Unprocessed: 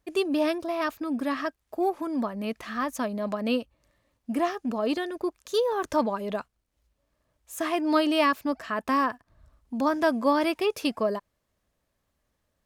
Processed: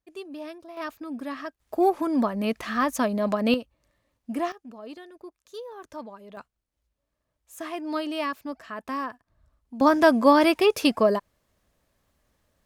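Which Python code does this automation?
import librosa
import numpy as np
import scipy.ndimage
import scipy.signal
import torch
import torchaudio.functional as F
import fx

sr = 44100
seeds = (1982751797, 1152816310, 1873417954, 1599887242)

y = fx.gain(x, sr, db=fx.steps((0.0, -13.0), (0.77, -5.5), (1.6, 5.0), (3.54, -2.0), (4.52, -14.0), (6.37, -6.5), (9.81, 6.0)))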